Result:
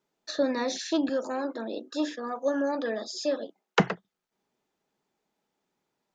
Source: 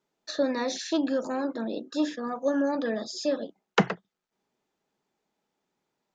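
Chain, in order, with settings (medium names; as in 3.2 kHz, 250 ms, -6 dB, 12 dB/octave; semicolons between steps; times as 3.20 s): 1.09–3.80 s: high-pass 290 Hz 12 dB/octave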